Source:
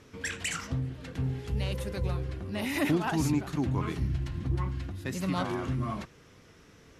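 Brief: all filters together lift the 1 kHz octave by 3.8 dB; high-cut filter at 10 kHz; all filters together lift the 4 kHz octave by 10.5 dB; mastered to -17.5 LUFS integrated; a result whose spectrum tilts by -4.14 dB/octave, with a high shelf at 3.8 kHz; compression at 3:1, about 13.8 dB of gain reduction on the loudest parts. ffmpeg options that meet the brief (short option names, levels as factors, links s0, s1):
-af "lowpass=10000,equalizer=f=1000:t=o:g=3.5,highshelf=f=3800:g=8.5,equalizer=f=4000:t=o:g=8.5,acompressor=threshold=0.00891:ratio=3,volume=15"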